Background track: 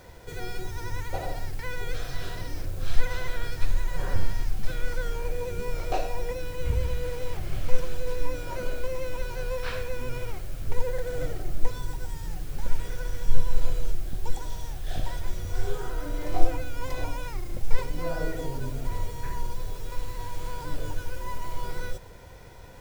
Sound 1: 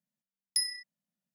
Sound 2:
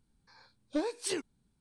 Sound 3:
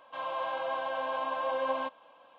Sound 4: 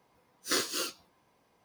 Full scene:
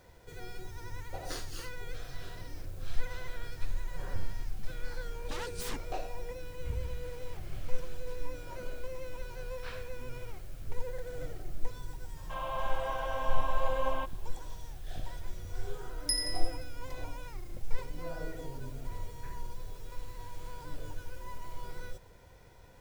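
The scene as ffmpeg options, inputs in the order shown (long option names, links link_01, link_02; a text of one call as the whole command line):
ffmpeg -i bed.wav -i cue0.wav -i cue1.wav -i cue2.wav -i cue3.wav -filter_complex "[0:a]volume=-9.5dB[link_01];[2:a]aeval=exprs='0.0708*sin(PI/2*5.62*val(0)/0.0708)':channel_layout=same[link_02];[1:a]aecho=1:1:87|174|261|348|435|522|609:0.335|0.194|0.113|0.0654|0.0379|0.022|0.0128[link_03];[4:a]atrim=end=1.64,asetpts=PTS-STARTPTS,volume=-13dB,afade=type=in:duration=0.004:curve=hsin,afade=type=out:start_time=1.636:duration=0.004:curve=hsin,adelay=790[link_04];[link_02]atrim=end=1.6,asetpts=PTS-STARTPTS,volume=-14.5dB,afade=type=in:duration=0.004:curve=hsin,afade=type=out:start_time=1.596:duration=0.004:curve=hsin,adelay=4560[link_05];[3:a]atrim=end=2.38,asetpts=PTS-STARTPTS,volume=-2.5dB,afade=type=in:duration=0.004:curve=hsin,afade=type=out:start_time=2.376:duration=0.004:curve=hsin,adelay=12170[link_06];[link_03]atrim=end=1.34,asetpts=PTS-STARTPTS,volume=-2dB,afade=type=in:duration=0.004:curve=hsin,afade=type=out:start_time=1.336:duration=0.004:curve=hsin,adelay=15530[link_07];[link_01][link_04][link_05][link_06][link_07]amix=inputs=5:normalize=0" out.wav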